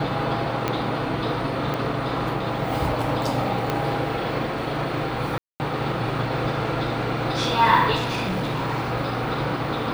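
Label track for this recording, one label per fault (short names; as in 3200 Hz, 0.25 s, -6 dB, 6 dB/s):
0.680000	0.680000	pop -9 dBFS
1.740000	1.740000	pop -14 dBFS
3.700000	3.700000	pop -10 dBFS
5.380000	5.600000	gap 0.219 s
7.950000	8.920000	clipped -21.5 dBFS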